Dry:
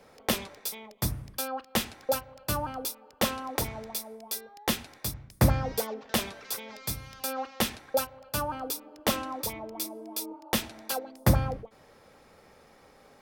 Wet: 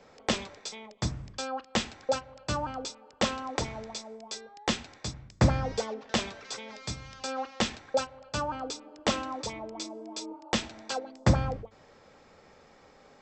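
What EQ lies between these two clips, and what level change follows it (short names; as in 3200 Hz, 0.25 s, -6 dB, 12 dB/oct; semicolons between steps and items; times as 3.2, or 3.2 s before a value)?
brick-wall FIR low-pass 8100 Hz; notches 50/100 Hz; 0.0 dB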